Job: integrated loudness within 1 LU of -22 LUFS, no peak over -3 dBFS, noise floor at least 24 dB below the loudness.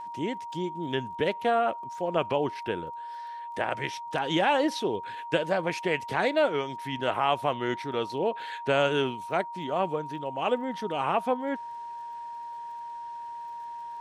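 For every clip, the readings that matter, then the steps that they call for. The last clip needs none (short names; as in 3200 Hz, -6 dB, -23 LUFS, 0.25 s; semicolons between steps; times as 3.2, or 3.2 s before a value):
ticks 27/s; steady tone 940 Hz; tone level -36 dBFS; loudness -29.5 LUFS; peak -10.5 dBFS; loudness target -22.0 LUFS
-> de-click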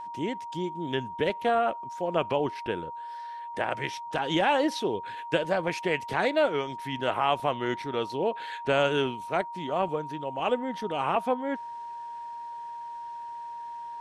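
ticks 0/s; steady tone 940 Hz; tone level -36 dBFS
-> notch 940 Hz, Q 30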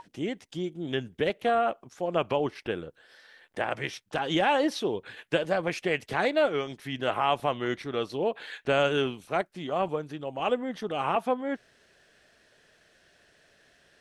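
steady tone none; loudness -29.5 LUFS; peak -11.0 dBFS; loudness target -22.0 LUFS
-> gain +7.5 dB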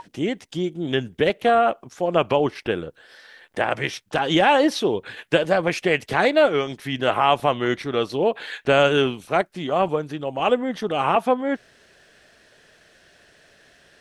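loudness -22.0 LUFS; peak -3.5 dBFS; noise floor -56 dBFS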